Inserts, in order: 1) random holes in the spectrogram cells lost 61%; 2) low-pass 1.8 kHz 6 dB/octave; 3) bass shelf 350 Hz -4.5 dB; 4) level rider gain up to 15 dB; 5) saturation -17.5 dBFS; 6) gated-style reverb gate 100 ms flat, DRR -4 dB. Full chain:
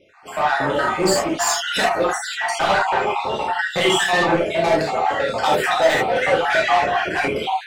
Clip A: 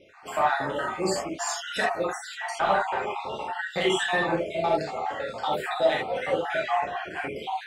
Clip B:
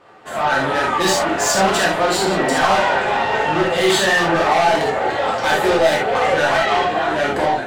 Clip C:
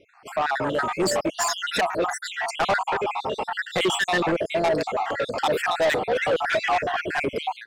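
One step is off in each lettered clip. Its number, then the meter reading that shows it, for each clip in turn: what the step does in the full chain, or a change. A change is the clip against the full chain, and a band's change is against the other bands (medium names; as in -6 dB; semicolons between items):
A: 4, 8 kHz band -2.0 dB; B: 1, momentary loudness spread change -1 LU; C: 6, crest factor change -7.5 dB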